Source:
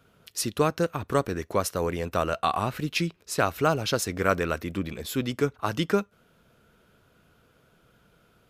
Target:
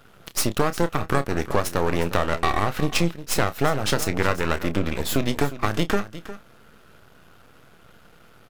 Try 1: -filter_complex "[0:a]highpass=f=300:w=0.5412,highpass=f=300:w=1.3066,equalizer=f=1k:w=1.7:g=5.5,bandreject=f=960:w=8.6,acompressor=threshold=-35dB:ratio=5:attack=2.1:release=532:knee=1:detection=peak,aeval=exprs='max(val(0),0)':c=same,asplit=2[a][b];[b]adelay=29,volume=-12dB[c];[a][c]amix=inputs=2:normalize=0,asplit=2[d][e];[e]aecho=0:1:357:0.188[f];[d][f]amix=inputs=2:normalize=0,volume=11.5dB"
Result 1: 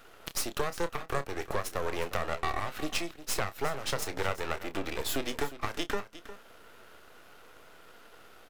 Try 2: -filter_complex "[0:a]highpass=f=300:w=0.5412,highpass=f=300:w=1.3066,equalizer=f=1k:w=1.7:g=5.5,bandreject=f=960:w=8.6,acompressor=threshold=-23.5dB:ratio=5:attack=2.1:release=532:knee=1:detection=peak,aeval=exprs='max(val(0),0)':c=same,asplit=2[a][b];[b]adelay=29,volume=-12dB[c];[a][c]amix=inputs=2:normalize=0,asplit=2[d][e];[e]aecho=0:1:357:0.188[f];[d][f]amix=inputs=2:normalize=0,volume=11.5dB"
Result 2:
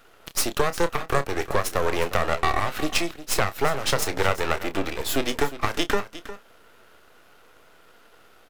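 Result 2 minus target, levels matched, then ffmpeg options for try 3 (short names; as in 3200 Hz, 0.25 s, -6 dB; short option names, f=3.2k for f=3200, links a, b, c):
250 Hz band -4.0 dB
-filter_complex "[0:a]equalizer=f=1k:w=1.7:g=5.5,bandreject=f=960:w=8.6,acompressor=threshold=-23.5dB:ratio=5:attack=2.1:release=532:knee=1:detection=peak,aeval=exprs='max(val(0),0)':c=same,asplit=2[a][b];[b]adelay=29,volume=-12dB[c];[a][c]amix=inputs=2:normalize=0,asplit=2[d][e];[e]aecho=0:1:357:0.188[f];[d][f]amix=inputs=2:normalize=0,volume=11.5dB"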